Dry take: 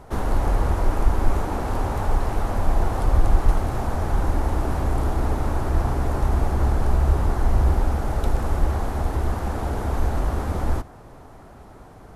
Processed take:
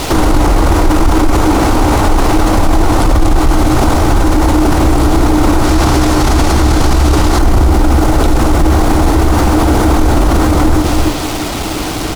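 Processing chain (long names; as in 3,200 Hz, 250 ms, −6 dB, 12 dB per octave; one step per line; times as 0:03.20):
bit-depth reduction 8 bits, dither none
parametric band 310 Hz +14 dB 0.23 octaves
notch filter 1,700 Hz, Q 14
parametric band 4,800 Hz +8.5 dB 2.8 octaves, from 0:05.64 +15 dB, from 0:07.39 +7 dB
single-tap delay 296 ms −13.5 dB
boost into a limiter +24.5 dB
level −1 dB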